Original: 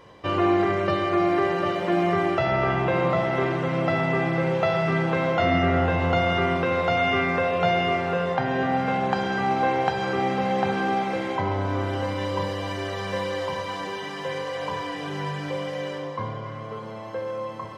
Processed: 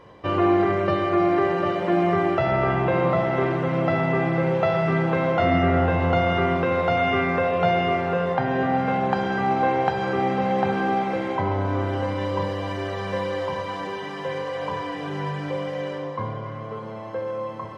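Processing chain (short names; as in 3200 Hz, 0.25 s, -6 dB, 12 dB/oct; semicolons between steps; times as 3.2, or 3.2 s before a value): high shelf 2900 Hz -9 dB; gain +2 dB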